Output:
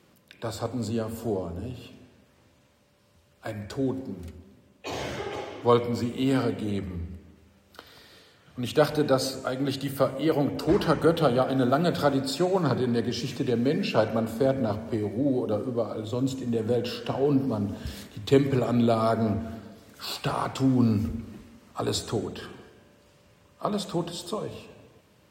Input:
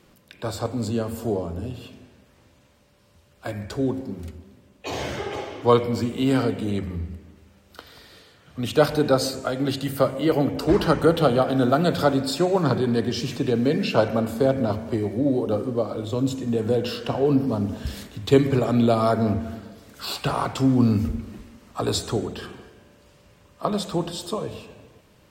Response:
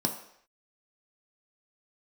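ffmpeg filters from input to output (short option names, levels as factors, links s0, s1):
-af "highpass=69,volume=0.668"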